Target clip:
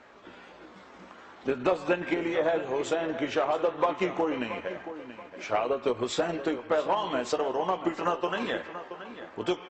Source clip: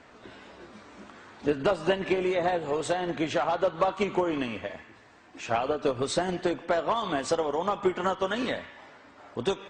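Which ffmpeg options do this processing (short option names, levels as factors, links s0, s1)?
-filter_complex "[0:a]asplit=2[s0][s1];[s1]adelay=15,volume=0.299[s2];[s0][s2]amix=inputs=2:normalize=0,asplit=2[s3][s4];[s4]adelay=678,lowpass=f=4500:p=1,volume=0.251,asplit=2[s5][s6];[s6]adelay=678,lowpass=f=4500:p=1,volume=0.35,asplit=2[s7][s8];[s8]adelay=678,lowpass=f=4500:p=1,volume=0.35,asplit=2[s9][s10];[s10]adelay=678,lowpass=f=4500:p=1,volume=0.35[s11];[s5][s7][s9][s11]amix=inputs=4:normalize=0[s12];[s3][s12]amix=inputs=2:normalize=0,asetrate=40440,aresample=44100,atempo=1.09051,bass=f=250:g=-8,treble=f=4000:g=-4"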